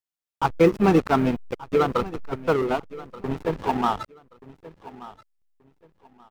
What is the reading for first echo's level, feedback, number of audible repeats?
-18.0 dB, 24%, 2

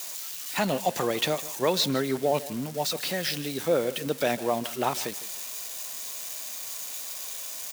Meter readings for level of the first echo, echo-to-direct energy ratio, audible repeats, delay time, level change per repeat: -17.5 dB, -17.0 dB, 2, 154 ms, -10.0 dB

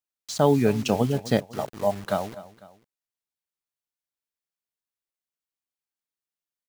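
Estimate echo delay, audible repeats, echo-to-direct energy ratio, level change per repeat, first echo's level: 250 ms, 2, -16.5 dB, -6.0 dB, -17.5 dB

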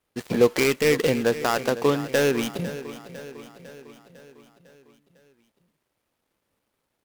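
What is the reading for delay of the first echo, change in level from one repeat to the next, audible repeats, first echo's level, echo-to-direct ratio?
502 ms, -5.0 dB, 5, -14.5 dB, -13.0 dB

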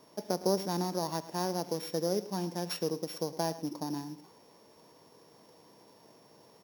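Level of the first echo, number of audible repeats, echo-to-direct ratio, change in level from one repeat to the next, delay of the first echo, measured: -21.0 dB, 2, -15.0 dB, no regular repeats, 68 ms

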